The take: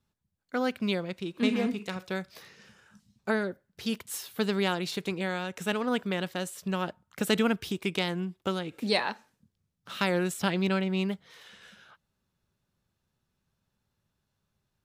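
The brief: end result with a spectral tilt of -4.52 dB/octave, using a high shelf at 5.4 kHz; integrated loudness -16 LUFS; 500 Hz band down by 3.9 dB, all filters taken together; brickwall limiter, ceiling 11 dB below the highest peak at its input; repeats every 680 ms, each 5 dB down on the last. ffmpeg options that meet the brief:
-af "equalizer=f=500:t=o:g=-5,highshelf=f=5400:g=6.5,alimiter=limit=0.0794:level=0:latency=1,aecho=1:1:680|1360|2040|2720|3400|4080|4760:0.562|0.315|0.176|0.0988|0.0553|0.031|0.0173,volume=7.08"

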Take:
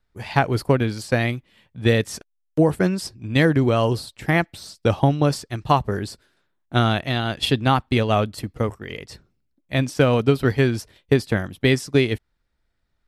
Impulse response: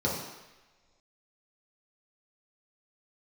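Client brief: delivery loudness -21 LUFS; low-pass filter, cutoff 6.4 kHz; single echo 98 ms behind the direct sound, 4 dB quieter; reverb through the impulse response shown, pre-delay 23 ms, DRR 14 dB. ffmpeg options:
-filter_complex "[0:a]lowpass=6400,aecho=1:1:98:0.631,asplit=2[s0][s1];[1:a]atrim=start_sample=2205,adelay=23[s2];[s1][s2]afir=irnorm=-1:irlink=0,volume=0.0631[s3];[s0][s3]amix=inputs=2:normalize=0,volume=0.841"

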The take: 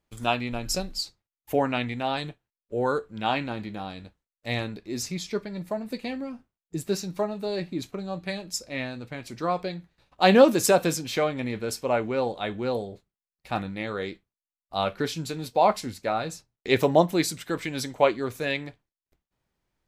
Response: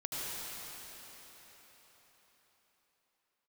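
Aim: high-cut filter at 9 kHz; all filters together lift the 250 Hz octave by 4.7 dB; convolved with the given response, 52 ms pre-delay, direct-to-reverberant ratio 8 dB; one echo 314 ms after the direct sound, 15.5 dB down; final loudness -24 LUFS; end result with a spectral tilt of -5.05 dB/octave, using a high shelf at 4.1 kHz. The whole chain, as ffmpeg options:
-filter_complex "[0:a]lowpass=9000,equalizer=f=250:t=o:g=6,highshelf=f=4100:g=-4,aecho=1:1:314:0.168,asplit=2[s0][s1];[1:a]atrim=start_sample=2205,adelay=52[s2];[s1][s2]afir=irnorm=-1:irlink=0,volume=0.237[s3];[s0][s3]amix=inputs=2:normalize=0,volume=1.12"

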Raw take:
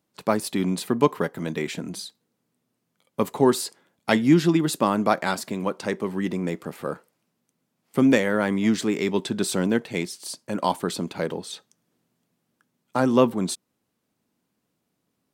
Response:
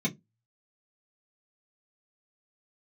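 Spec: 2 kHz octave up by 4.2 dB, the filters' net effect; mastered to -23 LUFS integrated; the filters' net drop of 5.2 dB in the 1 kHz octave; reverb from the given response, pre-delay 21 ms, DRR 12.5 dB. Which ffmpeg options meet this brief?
-filter_complex "[0:a]equalizer=f=1000:t=o:g=-9,equalizer=f=2000:t=o:g=8,asplit=2[s0][s1];[1:a]atrim=start_sample=2205,adelay=21[s2];[s1][s2]afir=irnorm=-1:irlink=0,volume=0.112[s3];[s0][s3]amix=inputs=2:normalize=0,volume=0.944"

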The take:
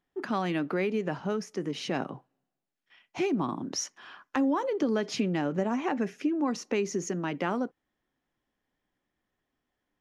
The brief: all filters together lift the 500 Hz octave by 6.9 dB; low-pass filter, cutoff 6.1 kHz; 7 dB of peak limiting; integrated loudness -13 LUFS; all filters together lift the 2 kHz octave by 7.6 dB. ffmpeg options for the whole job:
-af "lowpass=6100,equalizer=f=500:t=o:g=8.5,equalizer=f=2000:t=o:g=9,volume=5.31,alimiter=limit=0.794:level=0:latency=1"

